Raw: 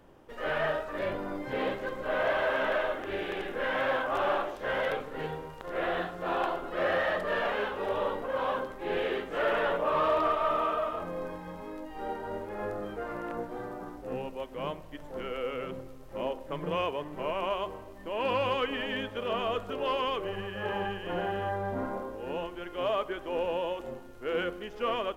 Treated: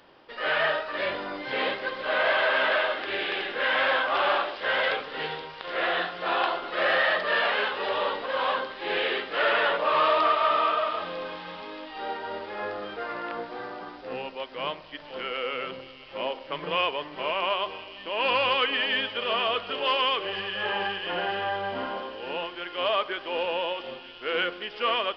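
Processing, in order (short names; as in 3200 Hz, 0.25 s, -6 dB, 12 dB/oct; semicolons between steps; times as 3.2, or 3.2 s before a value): tilt +4 dB/oct; on a send: thin delay 0.475 s, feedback 71%, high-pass 3800 Hz, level -7 dB; on the sum: downsampling 11025 Hz; gain +5 dB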